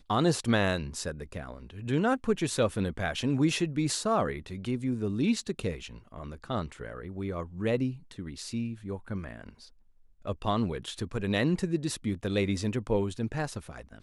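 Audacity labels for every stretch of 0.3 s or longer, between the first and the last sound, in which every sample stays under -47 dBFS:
9.690000	10.250000	silence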